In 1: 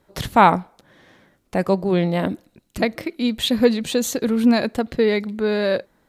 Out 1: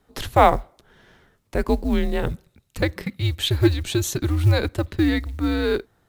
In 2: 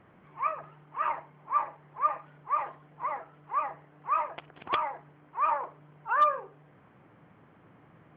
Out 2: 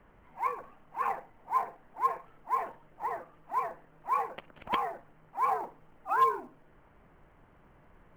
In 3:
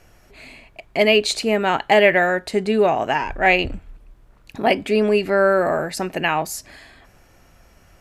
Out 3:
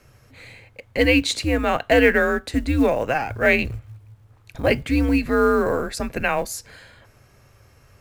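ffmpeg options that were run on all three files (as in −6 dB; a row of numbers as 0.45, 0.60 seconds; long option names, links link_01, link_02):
-af "acrusher=bits=8:mode=log:mix=0:aa=0.000001,afreqshift=-140,volume=-1.5dB"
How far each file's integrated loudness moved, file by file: −2.0, −1.5, −1.5 LU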